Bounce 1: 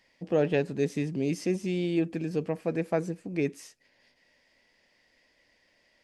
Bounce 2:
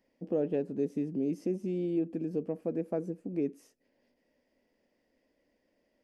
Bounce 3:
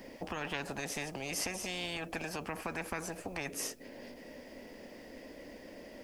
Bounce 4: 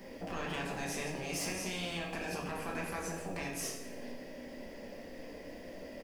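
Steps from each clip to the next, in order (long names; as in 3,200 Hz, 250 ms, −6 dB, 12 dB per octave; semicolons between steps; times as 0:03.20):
graphic EQ with 10 bands 125 Hz −5 dB, 250 Hz +8 dB, 500 Hz +4 dB, 1,000 Hz −4 dB, 2,000 Hz −8 dB, 4,000 Hz −10 dB, 8,000 Hz −8 dB; downward compressor 1.5 to 1, threshold −28 dBFS, peak gain reduction 4.5 dB; level −5 dB
brickwall limiter −24.5 dBFS, peak gain reduction 5 dB; every bin compressed towards the loudest bin 10 to 1; level +2.5 dB
soft clipping −31.5 dBFS, distortion −15 dB; repeating echo 85 ms, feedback 55%, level −12.5 dB; rectangular room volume 190 cubic metres, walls mixed, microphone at 1.2 metres; level −2.5 dB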